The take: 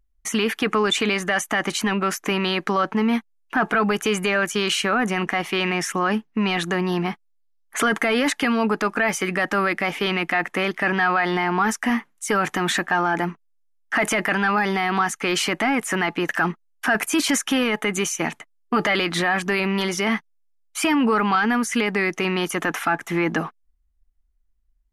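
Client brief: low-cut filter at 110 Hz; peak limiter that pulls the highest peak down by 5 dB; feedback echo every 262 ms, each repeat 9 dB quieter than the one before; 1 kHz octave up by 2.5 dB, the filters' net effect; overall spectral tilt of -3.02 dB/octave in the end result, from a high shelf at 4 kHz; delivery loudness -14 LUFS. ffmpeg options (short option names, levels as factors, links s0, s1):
-af "highpass=110,equalizer=f=1000:t=o:g=3,highshelf=f=4000:g=4.5,alimiter=limit=0.237:level=0:latency=1,aecho=1:1:262|524|786|1048:0.355|0.124|0.0435|0.0152,volume=2.66"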